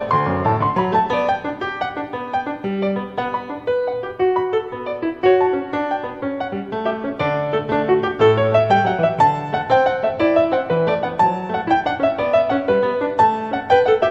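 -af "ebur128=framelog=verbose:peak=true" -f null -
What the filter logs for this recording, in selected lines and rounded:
Integrated loudness:
  I:         -18.8 LUFS
  Threshold: -28.8 LUFS
Loudness range:
  LRA:         5.6 LU
  Threshold: -39.0 LUFS
  LRA low:   -22.4 LUFS
  LRA high:  -16.8 LUFS
True peak:
  Peak:       -2.3 dBFS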